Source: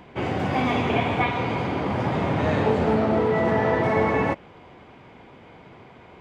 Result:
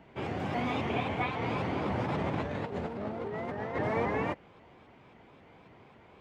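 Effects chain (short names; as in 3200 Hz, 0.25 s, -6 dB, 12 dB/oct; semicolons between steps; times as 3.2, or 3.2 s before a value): 1.42–3.76 negative-ratio compressor -24 dBFS, ratio -0.5; shaped vibrato saw up 3.7 Hz, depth 160 cents; gain -9 dB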